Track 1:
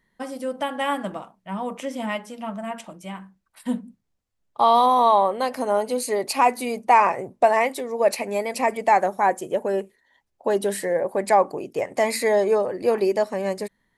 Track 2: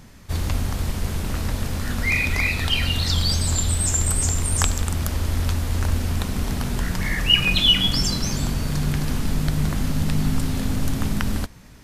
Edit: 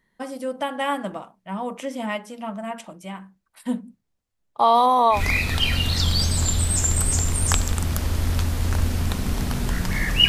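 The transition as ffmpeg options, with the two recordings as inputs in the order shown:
-filter_complex "[0:a]apad=whole_dur=10.28,atrim=end=10.28,atrim=end=5.22,asetpts=PTS-STARTPTS[a];[1:a]atrim=start=2.2:end=7.38,asetpts=PTS-STARTPTS[b];[a][b]acrossfade=d=0.12:c1=tri:c2=tri"

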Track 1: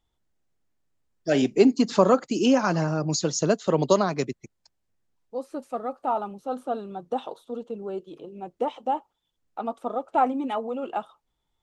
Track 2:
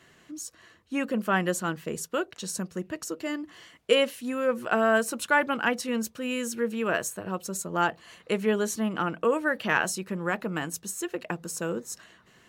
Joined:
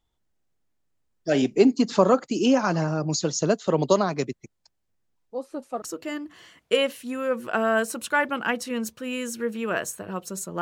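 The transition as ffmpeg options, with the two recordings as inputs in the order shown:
-filter_complex "[0:a]apad=whole_dur=10.61,atrim=end=10.61,atrim=end=5.822[a];[1:a]atrim=start=2.998:end=7.79[b];[a][b]acrossfade=d=0.004:c1=hsin:c2=hsin"

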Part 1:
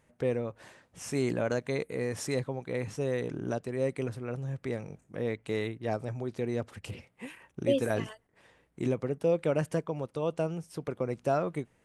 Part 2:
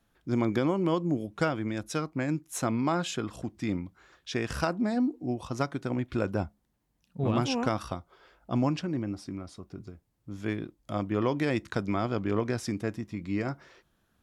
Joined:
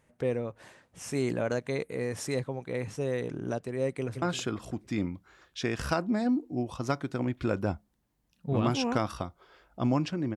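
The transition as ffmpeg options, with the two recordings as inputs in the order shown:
-filter_complex "[0:a]apad=whole_dur=10.36,atrim=end=10.36,atrim=end=4.222[a];[1:a]atrim=start=2.928:end=9.07[b];[a][b]acrossfade=d=0.004:c1=hsin:c2=hsin,asplit=2[c][d];[d]afade=t=in:st=3.91:d=0.01,afade=t=out:st=4.22:d=0.01,aecho=0:1:170|340|510|680|850:0.298538|0.149269|0.0746346|0.0373173|0.0186586[e];[c][e]amix=inputs=2:normalize=0"

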